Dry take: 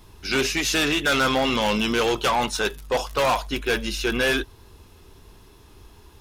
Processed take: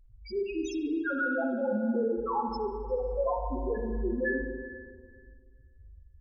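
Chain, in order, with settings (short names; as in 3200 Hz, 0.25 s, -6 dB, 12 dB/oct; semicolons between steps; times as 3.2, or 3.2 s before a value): reverse echo 93 ms -19 dB; loudest bins only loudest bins 1; spring tank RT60 1.9 s, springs 40/58 ms, chirp 50 ms, DRR 1.5 dB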